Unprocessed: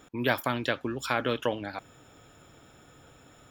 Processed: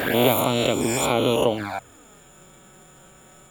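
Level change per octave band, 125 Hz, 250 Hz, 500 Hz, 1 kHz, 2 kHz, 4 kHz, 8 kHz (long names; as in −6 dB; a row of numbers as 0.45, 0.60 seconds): +9.0, +9.5, +10.5, +7.5, +3.0, +10.0, +18.5 decibels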